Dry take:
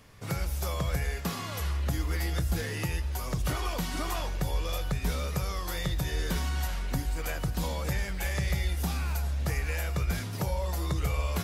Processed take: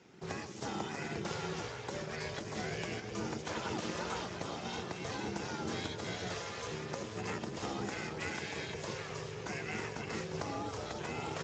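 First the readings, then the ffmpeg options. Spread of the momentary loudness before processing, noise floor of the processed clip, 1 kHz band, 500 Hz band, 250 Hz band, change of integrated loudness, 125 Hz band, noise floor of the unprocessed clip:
3 LU, -45 dBFS, -2.5 dB, -2.0 dB, -4.0 dB, -8.0 dB, -13.5 dB, -36 dBFS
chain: -filter_complex "[0:a]asplit=7[s0][s1][s2][s3][s4][s5][s6];[s1]adelay=352,afreqshift=46,volume=0.355[s7];[s2]adelay=704,afreqshift=92,volume=0.191[s8];[s3]adelay=1056,afreqshift=138,volume=0.104[s9];[s4]adelay=1408,afreqshift=184,volume=0.0556[s10];[s5]adelay=1760,afreqshift=230,volume=0.0302[s11];[s6]adelay=2112,afreqshift=276,volume=0.0162[s12];[s0][s7][s8][s9][s10][s11][s12]amix=inputs=7:normalize=0,afftfilt=real='re*lt(hypot(re,im),0.251)':imag='im*lt(hypot(re,im),0.251)':win_size=1024:overlap=0.75,aeval=exprs='val(0)*sin(2*PI*270*n/s)':c=same,volume=0.891" -ar 16000 -c:a libspeex -b:a 17k

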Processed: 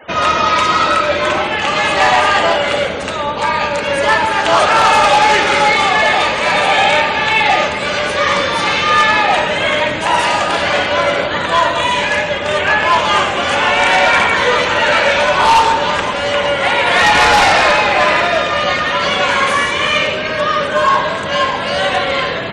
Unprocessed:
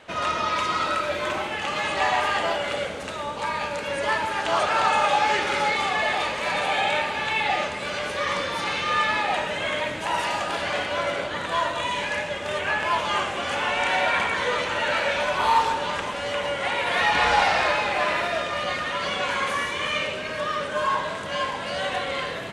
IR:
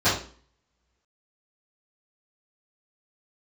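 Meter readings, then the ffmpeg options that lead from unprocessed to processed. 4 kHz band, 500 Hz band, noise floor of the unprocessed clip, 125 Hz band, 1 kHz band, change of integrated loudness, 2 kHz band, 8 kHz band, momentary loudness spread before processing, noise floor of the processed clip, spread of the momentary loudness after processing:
+12.0 dB, +12.0 dB, -32 dBFS, +12.0 dB, +11.5 dB, +11.5 dB, +11.5 dB, +11.5 dB, 7 LU, -20 dBFS, 6 LU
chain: -af "acontrast=26,aeval=exprs='0.282*(abs(mod(val(0)/0.282+3,4)-2)-1)':c=same,afftfilt=real='re*gte(hypot(re,im),0.00891)':imag='im*gte(hypot(re,im),0.00891)':win_size=1024:overlap=0.75,volume=2.24"

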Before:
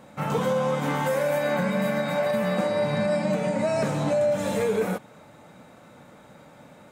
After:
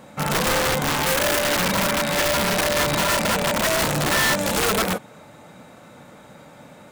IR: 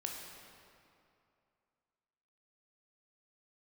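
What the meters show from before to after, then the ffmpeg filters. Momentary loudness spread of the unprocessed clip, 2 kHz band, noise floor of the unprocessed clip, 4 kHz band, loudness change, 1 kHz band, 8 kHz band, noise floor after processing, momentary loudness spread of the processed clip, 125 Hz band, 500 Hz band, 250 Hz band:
2 LU, +10.0 dB, -51 dBFS, +16.0 dB, +5.0 dB, +6.5 dB, +17.5 dB, -46 dBFS, 2 LU, +1.5 dB, -0.5 dB, +0.5 dB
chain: -af "highshelf=f=2600:g=3,aeval=exprs='(mod(9.44*val(0)+1,2)-1)/9.44':c=same,volume=1.58"

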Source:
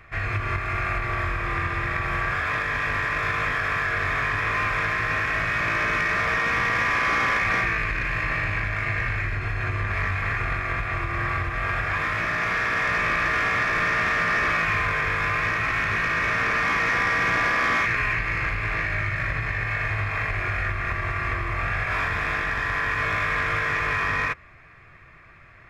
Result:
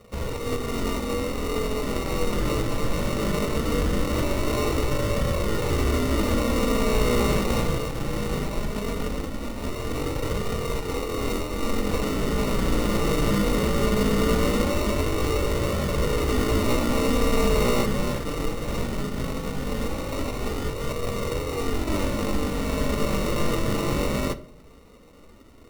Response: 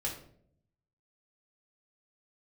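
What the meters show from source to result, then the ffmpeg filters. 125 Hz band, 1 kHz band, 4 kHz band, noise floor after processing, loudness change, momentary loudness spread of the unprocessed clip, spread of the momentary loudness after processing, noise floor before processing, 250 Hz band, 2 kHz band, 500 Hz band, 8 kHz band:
+2.0 dB, -5.5 dB, +3.0 dB, -47 dBFS, -2.5 dB, 5 LU, 7 LU, -49 dBFS, +12.0 dB, -14.0 dB, +9.0 dB, +10.0 dB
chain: -filter_complex "[0:a]highpass=370,highshelf=f=2200:t=q:w=3:g=-12.5,acrusher=samples=27:mix=1:aa=0.000001,flanger=delay=1.6:depth=4.6:regen=-45:speed=0.19:shape=triangular,asplit=2[s0][s1];[1:a]atrim=start_sample=2205[s2];[s1][s2]afir=irnorm=-1:irlink=0,volume=0.266[s3];[s0][s3]amix=inputs=2:normalize=0"

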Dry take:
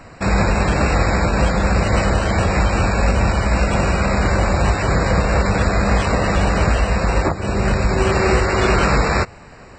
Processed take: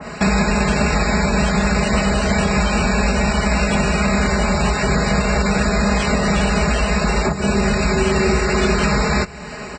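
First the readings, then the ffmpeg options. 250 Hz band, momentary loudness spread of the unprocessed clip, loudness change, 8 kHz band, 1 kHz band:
+3.0 dB, 2 LU, 0.0 dB, +4.0 dB, -1.0 dB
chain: -filter_complex "[0:a]highpass=57,aecho=1:1:4.8:0.92,acrossover=split=280|5800[s0][s1][s2];[s0]acompressor=threshold=0.0501:ratio=4[s3];[s1]acompressor=threshold=0.0316:ratio=4[s4];[s2]acompressor=threshold=0.00316:ratio=4[s5];[s3][s4][s5]amix=inputs=3:normalize=0,asplit=2[s6][s7];[s7]aecho=0:1:188:0.0794[s8];[s6][s8]amix=inputs=2:normalize=0,adynamicequalizer=threshold=0.00631:dfrequency=2100:dqfactor=0.7:tfrequency=2100:tqfactor=0.7:attack=5:release=100:ratio=0.375:range=2.5:mode=boostabove:tftype=highshelf,volume=2.51"

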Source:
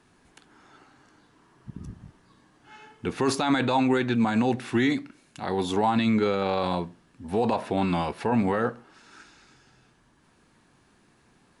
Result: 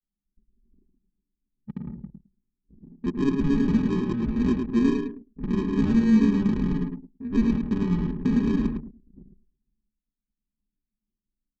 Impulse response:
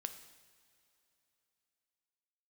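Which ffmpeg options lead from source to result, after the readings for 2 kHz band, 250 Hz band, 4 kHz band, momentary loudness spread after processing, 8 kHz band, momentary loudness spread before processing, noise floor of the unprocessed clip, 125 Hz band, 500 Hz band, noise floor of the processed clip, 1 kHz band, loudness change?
-8.5 dB, +4.0 dB, under -10 dB, 17 LU, under -10 dB, 14 LU, -62 dBFS, +3.5 dB, -6.0 dB, under -85 dBFS, -14.0 dB, +1.5 dB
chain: -filter_complex "[0:a]flanger=delay=1.7:depth=3.8:regen=-37:speed=0.25:shape=triangular,highpass=65,aresample=16000,acrusher=samples=23:mix=1:aa=0.000001,aresample=44100,agate=range=0.0224:threshold=0.002:ratio=3:detection=peak,lowpass=f=3200:p=1,aecho=1:1:4.8:0.72,asplit=2[s0][s1];[s1]acompressor=threshold=0.0178:ratio=6,volume=1[s2];[s0][s2]amix=inputs=2:normalize=0,lowshelf=f=390:t=q:w=3:g=7.5,aecho=1:1:107|214|321|428:0.562|0.169|0.0506|0.0152,anlmdn=39.8,volume=0.398"

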